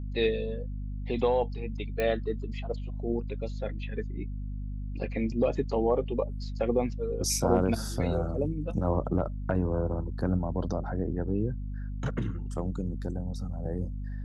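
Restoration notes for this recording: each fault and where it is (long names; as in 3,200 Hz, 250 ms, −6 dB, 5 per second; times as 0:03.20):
mains hum 50 Hz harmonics 5 −35 dBFS
0:02.00: click −17 dBFS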